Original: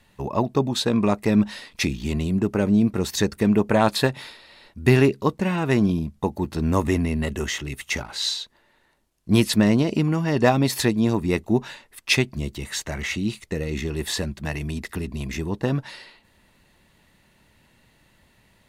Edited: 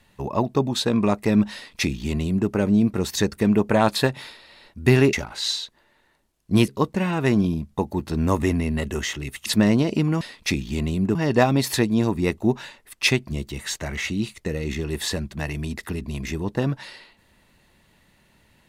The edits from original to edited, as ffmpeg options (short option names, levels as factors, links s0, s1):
-filter_complex "[0:a]asplit=6[s0][s1][s2][s3][s4][s5];[s0]atrim=end=5.132[s6];[s1]atrim=start=7.908:end=9.462[s7];[s2]atrim=start=5.128:end=7.912[s8];[s3]atrim=start=9.458:end=10.212[s9];[s4]atrim=start=1.538:end=2.482[s10];[s5]atrim=start=10.208[s11];[s6][s7]acrossfade=d=0.004:c1=hsin:c2=hsin[s12];[s12][s8]acrossfade=d=0.004:c1=hsin:c2=hsin[s13];[s13][s9]acrossfade=d=0.004:c1=hsin:c2=hsin[s14];[s14][s10]acrossfade=d=0.004:c1=hsin:c2=hsin[s15];[s15][s11]acrossfade=d=0.004:c1=hsin:c2=hsin"